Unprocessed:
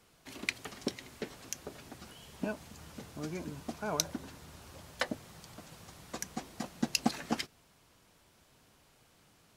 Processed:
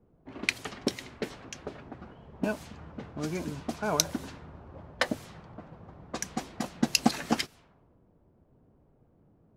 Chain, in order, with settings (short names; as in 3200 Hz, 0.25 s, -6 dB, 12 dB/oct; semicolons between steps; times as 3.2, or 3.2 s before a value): low-pass opened by the level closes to 390 Hz, open at -36 dBFS; gain +6 dB